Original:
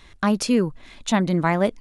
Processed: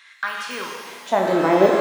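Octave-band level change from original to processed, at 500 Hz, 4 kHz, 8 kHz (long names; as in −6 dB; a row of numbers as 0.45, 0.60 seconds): +6.0, −0.5, −6.5 decibels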